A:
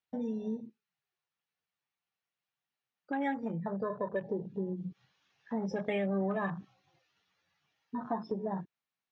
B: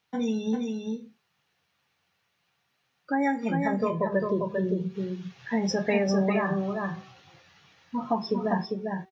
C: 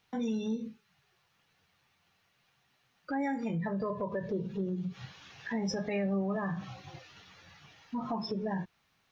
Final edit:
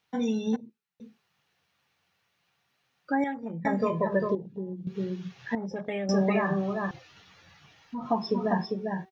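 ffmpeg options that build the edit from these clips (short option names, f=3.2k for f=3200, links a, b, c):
-filter_complex "[0:a]asplit=4[a][b][c][d];[1:a]asplit=6[e][f][g][h][i][j];[e]atrim=end=0.562[k];[a]atrim=start=0.558:end=1.002[l];[f]atrim=start=0.998:end=3.242[m];[b]atrim=start=3.238:end=3.652[n];[g]atrim=start=3.648:end=4.352[o];[c]atrim=start=4.348:end=4.872[p];[h]atrim=start=4.868:end=5.552[q];[d]atrim=start=5.548:end=6.092[r];[i]atrim=start=6.088:end=6.912[s];[2:a]atrim=start=6.908:end=8.062[t];[j]atrim=start=8.058[u];[k][l]acrossfade=d=0.004:c1=hsin:c2=hsin[v];[v][m]acrossfade=d=0.004:c1=hsin:c2=hsin[w];[w][n]acrossfade=d=0.004:c1=hsin:c2=hsin[x];[x][o]acrossfade=d=0.004:c1=hsin:c2=hsin[y];[y][p]acrossfade=d=0.004:c1=hsin:c2=hsin[z];[z][q]acrossfade=d=0.004:c1=hsin:c2=hsin[aa];[aa][r]acrossfade=d=0.004:c1=hsin:c2=hsin[ab];[ab][s]acrossfade=d=0.004:c1=hsin:c2=hsin[ac];[ac][t]acrossfade=d=0.004:c1=hsin:c2=hsin[ad];[ad][u]acrossfade=d=0.004:c1=hsin:c2=hsin"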